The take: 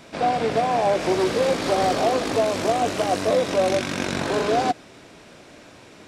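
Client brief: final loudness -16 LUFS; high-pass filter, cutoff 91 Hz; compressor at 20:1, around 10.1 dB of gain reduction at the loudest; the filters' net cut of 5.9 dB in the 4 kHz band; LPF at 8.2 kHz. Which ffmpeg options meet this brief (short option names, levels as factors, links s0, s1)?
-af "highpass=91,lowpass=8200,equalizer=f=4000:t=o:g=-7.5,acompressor=threshold=0.0501:ratio=20,volume=5.62"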